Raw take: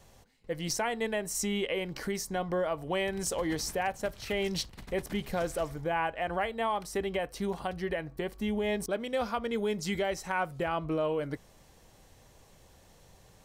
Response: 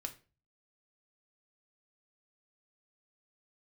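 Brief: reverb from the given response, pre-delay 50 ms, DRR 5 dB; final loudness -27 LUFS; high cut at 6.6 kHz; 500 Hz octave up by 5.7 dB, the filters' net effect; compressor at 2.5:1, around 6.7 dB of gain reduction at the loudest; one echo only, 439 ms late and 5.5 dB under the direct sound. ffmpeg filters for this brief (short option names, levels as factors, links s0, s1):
-filter_complex "[0:a]lowpass=6600,equalizer=f=500:t=o:g=7,acompressor=threshold=0.0251:ratio=2.5,aecho=1:1:439:0.531,asplit=2[s0][s1];[1:a]atrim=start_sample=2205,adelay=50[s2];[s1][s2]afir=irnorm=-1:irlink=0,volume=0.708[s3];[s0][s3]amix=inputs=2:normalize=0,volume=1.88"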